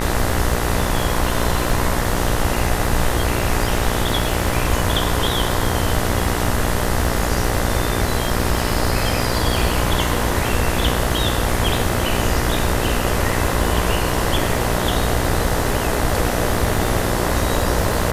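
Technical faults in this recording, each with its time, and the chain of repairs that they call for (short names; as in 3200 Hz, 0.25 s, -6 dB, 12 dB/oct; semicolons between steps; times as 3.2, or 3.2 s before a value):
buzz 60 Hz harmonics 34 -23 dBFS
crackle 35/s -25 dBFS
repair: de-click; de-hum 60 Hz, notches 34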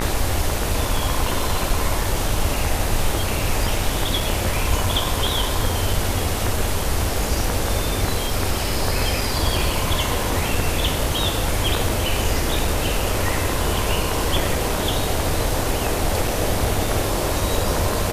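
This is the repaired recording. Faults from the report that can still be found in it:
none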